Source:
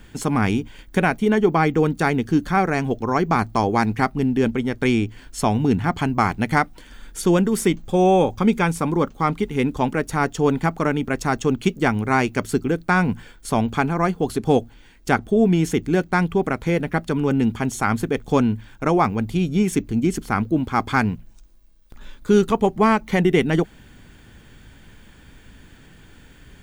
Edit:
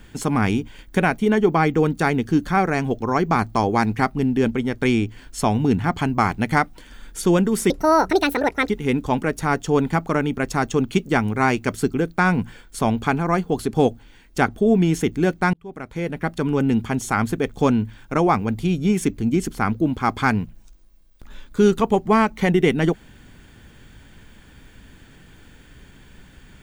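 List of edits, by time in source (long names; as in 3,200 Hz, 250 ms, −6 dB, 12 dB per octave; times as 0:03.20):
0:07.70–0:09.40: play speed 171%
0:16.24–0:17.17: fade in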